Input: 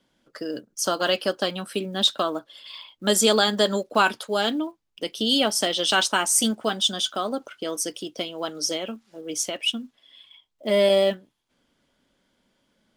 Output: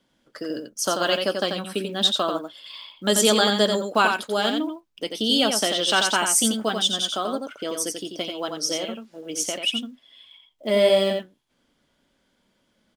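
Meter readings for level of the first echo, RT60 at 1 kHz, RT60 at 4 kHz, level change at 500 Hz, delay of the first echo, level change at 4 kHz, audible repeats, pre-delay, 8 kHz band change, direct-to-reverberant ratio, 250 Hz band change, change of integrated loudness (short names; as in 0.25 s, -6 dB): -5.5 dB, none, none, +0.5 dB, 88 ms, +1.0 dB, 1, none, +1.0 dB, none, +1.0 dB, +1.0 dB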